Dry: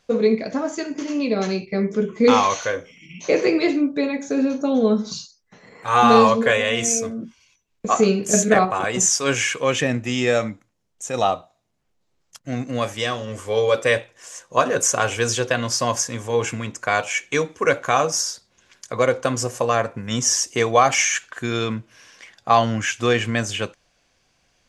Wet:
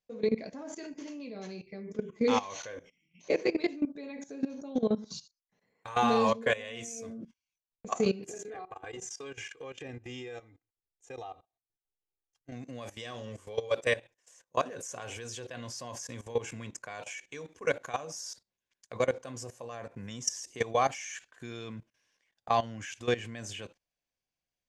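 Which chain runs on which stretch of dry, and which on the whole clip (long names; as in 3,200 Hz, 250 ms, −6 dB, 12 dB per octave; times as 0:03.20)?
0:08.26–0:12.52: low-pass filter 3,200 Hz 6 dB per octave + comb filter 2.5 ms, depth 86% + downward compressor 4 to 1, threshold −31 dBFS
whole clip: noise gate −38 dBFS, range −16 dB; parametric band 1,300 Hz −6.5 dB 0.32 octaves; output level in coarse steps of 17 dB; level −7.5 dB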